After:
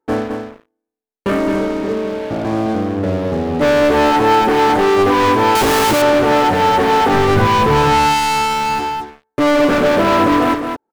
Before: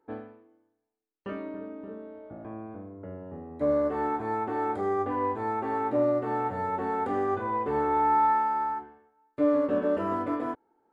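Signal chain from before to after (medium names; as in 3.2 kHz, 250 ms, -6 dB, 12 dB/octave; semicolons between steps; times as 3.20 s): waveshaping leveller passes 5; 7.14–8.80 s: resonant low shelf 220 Hz +8 dB, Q 1.5; delay 214 ms -7 dB; 5.55–6.02 s: Schmitt trigger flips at -23.5 dBFS; trim +4.5 dB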